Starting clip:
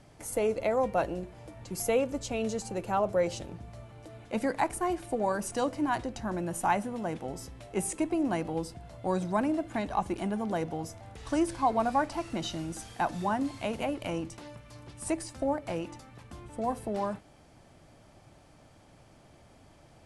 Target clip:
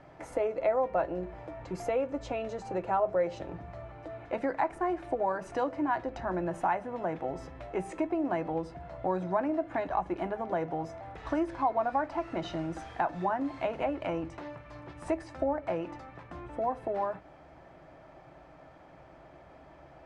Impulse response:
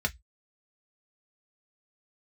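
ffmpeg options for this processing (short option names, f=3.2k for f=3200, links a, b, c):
-filter_complex "[0:a]lowpass=6.4k,bass=f=250:g=-8,treble=f=4k:g=-14,acompressor=threshold=-38dB:ratio=2,asplit=2[a][b];[1:a]atrim=start_sample=2205[c];[b][c]afir=irnorm=-1:irlink=0,volume=-12.5dB[d];[a][d]amix=inputs=2:normalize=0,volume=4.5dB"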